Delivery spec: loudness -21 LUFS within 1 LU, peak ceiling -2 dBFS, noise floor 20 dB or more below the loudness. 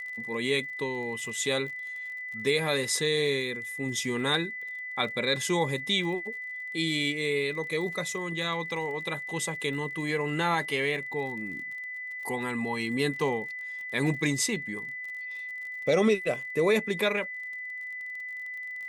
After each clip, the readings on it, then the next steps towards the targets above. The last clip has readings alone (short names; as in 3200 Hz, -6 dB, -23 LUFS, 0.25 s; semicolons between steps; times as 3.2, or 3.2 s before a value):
ticks 36/s; steady tone 2000 Hz; tone level -35 dBFS; loudness -29.5 LUFS; peak -12.5 dBFS; loudness target -21.0 LUFS
-> de-click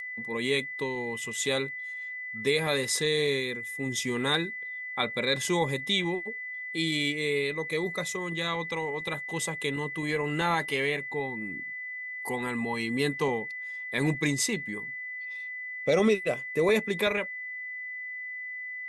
ticks 0.11/s; steady tone 2000 Hz; tone level -35 dBFS
-> notch 2000 Hz, Q 30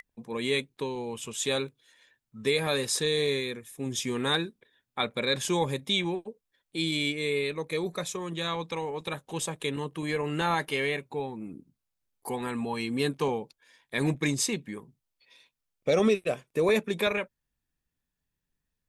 steady tone none; loudness -29.5 LUFS; peak -13.0 dBFS; loudness target -21.0 LUFS
-> gain +8.5 dB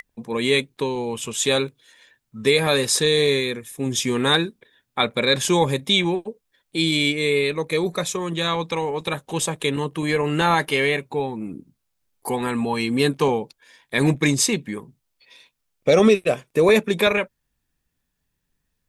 loudness -21.0 LUFS; peak -4.5 dBFS; noise floor -76 dBFS